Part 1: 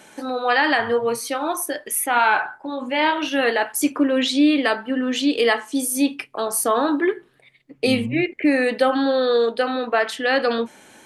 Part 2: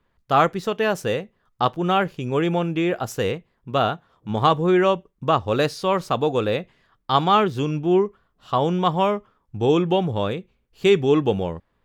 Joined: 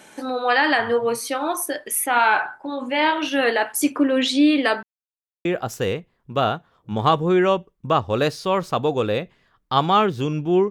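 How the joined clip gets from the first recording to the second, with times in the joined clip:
part 1
4.83–5.45 mute
5.45 switch to part 2 from 2.83 s

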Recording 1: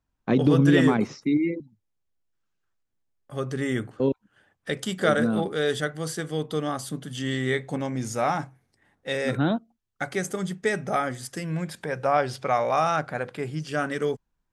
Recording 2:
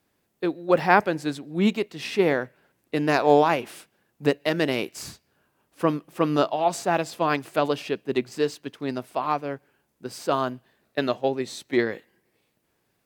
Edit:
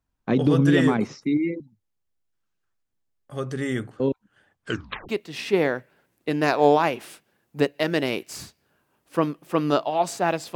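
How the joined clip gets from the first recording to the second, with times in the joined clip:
recording 1
4.63 tape stop 0.46 s
5.09 switch to recording 2 from 1.75 s

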